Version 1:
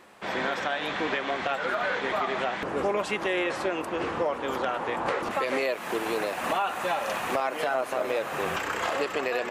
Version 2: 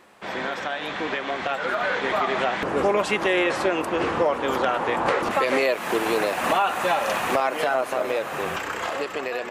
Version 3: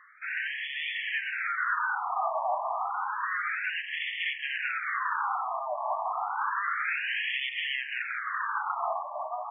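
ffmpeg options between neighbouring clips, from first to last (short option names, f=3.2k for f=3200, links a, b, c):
-af "dynaudnorm=f=220:g=17:m=6dB"
-af "aeval=exprs='0.075*(abs(mod(val(0)/0.075+3,4)-2)-1)':c=same,afftfilt=real='re*between(b*sr/1024,840*pow(2500/840,0.5+0.5*sin(2*PI*0.3*pts/sr))/1.41,840*pow(2500/840,0.5+0.5*sin(2*PI*0.3*pts/sr))*1.41)':imag='im*between(b*sr/1024,840*pow(2500/840,0.5+0.5*sin(2*PI*0.3*pts/sr))/1.41,840*pow(2500/840,0.5+0.5*sin(2*PI*0.3*pts/sr))*1.41)':win_size=1024:overlap=0.75,volume=3dB"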